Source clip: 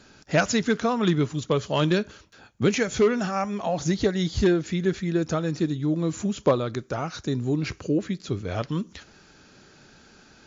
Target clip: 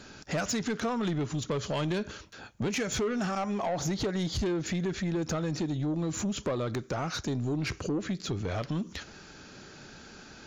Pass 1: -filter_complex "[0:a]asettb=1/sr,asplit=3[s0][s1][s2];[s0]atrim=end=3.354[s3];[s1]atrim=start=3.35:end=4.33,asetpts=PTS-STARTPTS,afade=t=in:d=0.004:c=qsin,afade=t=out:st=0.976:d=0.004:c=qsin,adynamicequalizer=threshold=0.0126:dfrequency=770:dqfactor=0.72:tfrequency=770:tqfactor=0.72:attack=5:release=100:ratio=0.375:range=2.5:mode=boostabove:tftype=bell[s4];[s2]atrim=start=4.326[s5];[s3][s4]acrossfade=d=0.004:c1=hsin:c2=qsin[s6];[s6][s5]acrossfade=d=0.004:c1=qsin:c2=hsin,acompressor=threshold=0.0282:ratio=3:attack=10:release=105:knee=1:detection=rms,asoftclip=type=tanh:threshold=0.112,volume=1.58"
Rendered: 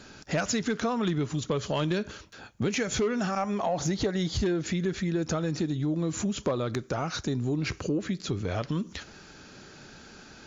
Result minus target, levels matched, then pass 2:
saturation: distortion -14 dB
-filter_complex "[0:a]asettb=1/sr,asplit=3[s0][s1][s2];[s0]atrim=end=3.354[s3];[s1]atrim=start=3.35:end=4.33,asetpts=PTS-STARTPTS,afade=t=in:d=0.004:c=qsin,afade=t=out:st=0.976:d=0.004:c=qsin,adynamicequalizer=threshold=0.0126:dfrequency=770:dqfactor=0.72:tfrequency=770:tqfactor=0.72:attack=5:release=100:ratio=0.375:range=2.5:mode=boostabove:tftype=bell[s4];[s2]atrim=start=4.326[s5];[s3][s4]acrossfade=d=0.004:c1=hsin:c2=qsin[s6];[s6][s5]acrossfade=d=0.004:c1=qsin:c2=hsin,acompressor=threshold=0.0282:ratio=3:attack=10:release=105:knee=1:detection=rms,asoftclip=type=tanh:threshold=0.0376,volume=1.58"

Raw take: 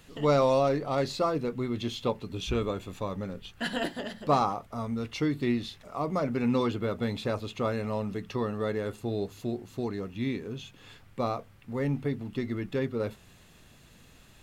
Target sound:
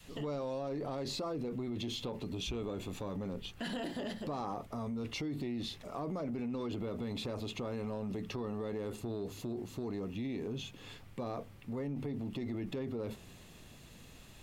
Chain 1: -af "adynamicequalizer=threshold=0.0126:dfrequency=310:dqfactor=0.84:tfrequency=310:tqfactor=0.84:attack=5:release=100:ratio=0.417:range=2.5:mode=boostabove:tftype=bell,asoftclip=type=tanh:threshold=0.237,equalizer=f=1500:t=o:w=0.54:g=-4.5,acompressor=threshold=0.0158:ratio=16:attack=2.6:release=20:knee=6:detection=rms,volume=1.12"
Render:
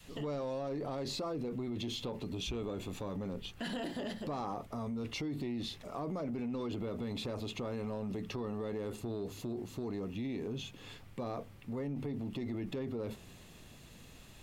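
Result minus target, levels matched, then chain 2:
saturation: distortion +12 dB
-af "adynamicequalizer=threshold=0.0126:dfrequency=310:dqfactor=0.84:tfrequency=310:tqfactor=0.84:attack=5:release=100:ratio=0.417:range=2.5:mode=boostabove:tftype=bell,asoftclip=type=tanh:threshold=0.531,equalizer=f=1500:t=o:w=0.54:g=-4.5,acompressor=threshold=0.0158:ratio=16:attack=2.6:release=20:knee=6:detection=rms,volume=1.12"

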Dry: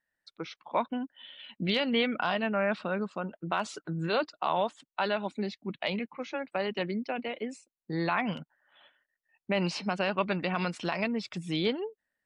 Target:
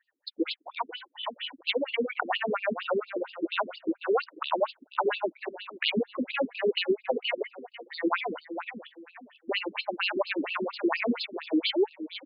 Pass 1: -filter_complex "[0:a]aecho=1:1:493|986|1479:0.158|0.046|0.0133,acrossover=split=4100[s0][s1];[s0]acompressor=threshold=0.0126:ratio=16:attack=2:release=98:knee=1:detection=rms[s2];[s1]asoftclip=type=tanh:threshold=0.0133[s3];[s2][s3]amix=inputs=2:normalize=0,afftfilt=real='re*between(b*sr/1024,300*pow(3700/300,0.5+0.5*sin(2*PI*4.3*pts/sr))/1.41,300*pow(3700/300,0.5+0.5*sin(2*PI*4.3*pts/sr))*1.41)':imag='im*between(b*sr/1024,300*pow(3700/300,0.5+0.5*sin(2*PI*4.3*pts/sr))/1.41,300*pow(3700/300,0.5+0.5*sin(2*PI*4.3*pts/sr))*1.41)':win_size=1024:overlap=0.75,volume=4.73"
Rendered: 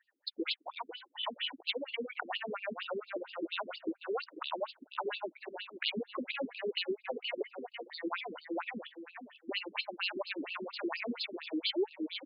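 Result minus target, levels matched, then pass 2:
compression: peak gain reduction +10.5 dB
-filter_complex "[0:a]aecho=1:1:493|986|1479:0.158|0.046|0.0133,acrossover=split=4100[s0][s1];[s0]acompressor=threshold=0.0447:ratio=16:attack=2:release=98:knee=1:detection=rms[s2];[s1]asoftclip=type=tanh:threshold=0.0133[s3];[s2][s3]amix=inputs=2:normalize=0,afftfilt=real='re*between(b*sr/1024,300*pow(3700/300,0.5+0.5*sin(2*PI*4.3*pts/sr))/1.41,300*pow(3700/300,0.5+0.5*sin(2*PI*4.3*pts/sr))*1.41)':imag='im*between(b*sr/1024,300*pow(3700/300,0.5+0.5*sin(2*PI*4.3*pts/sr))/1.41,300*pow(3700/300,0.5+0.5*sin(2*PI*4.3*pts/sr))*1.41)':win_size=1024:overlap=0.75,volume=4.73"

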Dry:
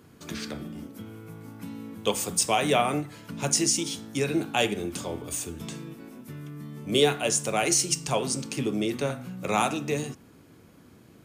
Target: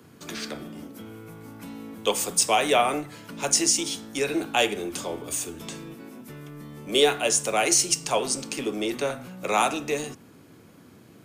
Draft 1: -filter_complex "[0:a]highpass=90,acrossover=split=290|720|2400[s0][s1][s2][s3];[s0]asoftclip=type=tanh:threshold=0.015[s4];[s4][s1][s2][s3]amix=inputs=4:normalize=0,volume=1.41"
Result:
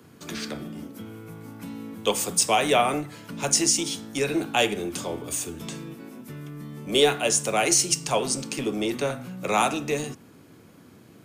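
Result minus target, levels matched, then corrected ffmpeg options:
saturation: distortion -5 dB
-filter_complex "[0:a]highpass=90,acrossover=split=290|720|2400[s0][s1][s2][s3];[s0]asoftclip=type=tanh:threshold=0.00531[s4];[s4][s1][s2][s3]amix=inputs=4:normalize=0,volume=1.41"

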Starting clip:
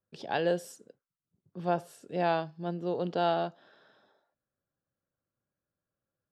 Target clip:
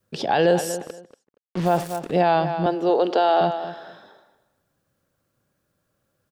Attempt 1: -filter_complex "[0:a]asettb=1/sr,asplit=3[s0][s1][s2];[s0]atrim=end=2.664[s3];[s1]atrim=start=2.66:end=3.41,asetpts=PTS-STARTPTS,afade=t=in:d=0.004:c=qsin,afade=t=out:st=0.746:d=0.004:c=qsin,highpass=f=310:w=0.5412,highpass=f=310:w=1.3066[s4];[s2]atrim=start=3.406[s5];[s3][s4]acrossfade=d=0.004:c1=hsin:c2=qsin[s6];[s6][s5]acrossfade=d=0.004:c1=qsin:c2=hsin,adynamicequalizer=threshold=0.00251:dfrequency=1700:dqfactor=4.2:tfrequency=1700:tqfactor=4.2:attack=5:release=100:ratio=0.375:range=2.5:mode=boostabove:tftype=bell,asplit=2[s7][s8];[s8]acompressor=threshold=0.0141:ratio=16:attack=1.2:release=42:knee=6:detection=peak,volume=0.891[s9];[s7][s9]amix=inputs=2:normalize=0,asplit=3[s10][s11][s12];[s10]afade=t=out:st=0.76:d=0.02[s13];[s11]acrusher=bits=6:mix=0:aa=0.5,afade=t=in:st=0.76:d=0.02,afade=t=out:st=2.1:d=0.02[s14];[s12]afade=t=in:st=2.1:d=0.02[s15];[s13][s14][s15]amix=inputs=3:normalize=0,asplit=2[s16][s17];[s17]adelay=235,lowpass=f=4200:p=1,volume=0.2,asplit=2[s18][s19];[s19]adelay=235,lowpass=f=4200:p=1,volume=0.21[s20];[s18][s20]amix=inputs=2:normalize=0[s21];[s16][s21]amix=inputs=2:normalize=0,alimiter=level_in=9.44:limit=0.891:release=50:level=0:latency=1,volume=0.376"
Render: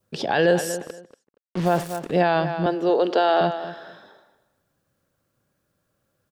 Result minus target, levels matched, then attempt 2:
2 kHz band +4.0 dB
-filter_complex "[0:a]asettb=1/sr,asplit=3[s0][s1][s2];[s0]atrim=end=2.664[s3];[s1]atrim=start=2.66:end=3.41,asetpts=PTS-STARTPTS,afade=t=in:d=0.004:c=qsin,afade=t=out:st=0.746:d=0.004:c=qsin,highpass=f=310:w=0.5412,highpass=f=310:w=1.3066[s4];[s2]atrim=start=3.406[s5];[s3][s4]acrossfade=d=0.004:c1=hsin:c2=qsin[s6];[s6][s5]acrossfade=d=0.004:c1=qsin:c2=hsin,adynamicequalizer=threshold=0.00251:dfrequency=790:dqfactor=4.2:tfrequency=790:tqfactor=4.2:attack=5:release=100:ratio=0.375:range=2.5:mode=boostabove:tftype=bell,asplit=2[s7][s8];[s8]acompressor=threshold=0.0141:ratio=16:attack=1.2:release=42:knee=6:detection=peak,volume=0.891[s9];[s7][s9]amix=inputs=2:normalize=0,asplit=3[s10][s11][s12];[s10]afade=t=out:st=0.76:d=0.02[s13];[s11]acrusher=bits=6:mix=0:aa=0.5,afade=t=in:st=0.76:d=0.02,afade=t=out:st=2.1:d=0.02[s14];[s12]afade=t=in:st=2.1:d=0.02[s15];[s13][s14][s15]amix=inputs=3:normalize=0,asplit=2[s16][s17];[s17]adelay=235,lowpass=f=4200:p=1,volume=0.2,asplit=2[s18][s19];[s19]adelay=235,lowpass=f=4200:p=1,volume=0.21[s20];[s18][s20]amix=inputs=2:normalize=0[s21];[s16][s21]amix=inputs=2:normalize=0,alimiter=level_in=9.44:limit=0.891:release=50:level=0:latency=1,volume=0.376"

